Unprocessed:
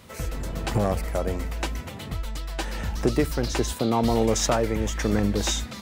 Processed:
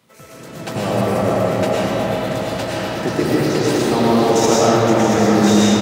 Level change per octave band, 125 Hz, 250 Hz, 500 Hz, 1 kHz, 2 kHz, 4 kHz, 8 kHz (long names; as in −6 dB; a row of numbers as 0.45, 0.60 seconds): +6.0, +11.0, +11.0, +11.5, +9.5, +7.5, +6.0 decibels